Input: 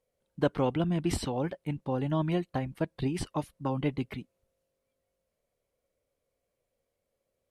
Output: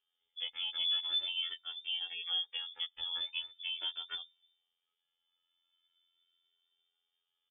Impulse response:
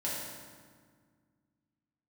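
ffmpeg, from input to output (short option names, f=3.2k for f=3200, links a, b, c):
-filter_complex "[0:a]equalizer=f=74:t=o:w=0.99:g=10.5,aecho=1:1:2.2:0.55,acompressor=threshold=-30dB:ratio=6,asplit=2[a][b];[b]alimiter=level_in=6dB:limit=-24dB:level=0:latency=1,volume=-6dB,volume=-1.5dB[c];[a][c]amix=inputs=2:normalize=0,afftfilt=real='hypot(re,im)*cos(PI*b)':imag='0':win_size=2048:overlap=0.75,lowpass=f=3.1k:t=q:w=0.5098,lowpass=f=3.1k:t=q:w=0.6013,lowpass=f=3.1k:t=q:w=0.9,lowpass=f=3.1k:t=q:w=2.563,afreqshift=-3600,asplit=2[d][e];[e]adelay=2.1,afreqshift=0.42[f];[d][f]amix=inputs=2:normalize=1,volume=-1dB"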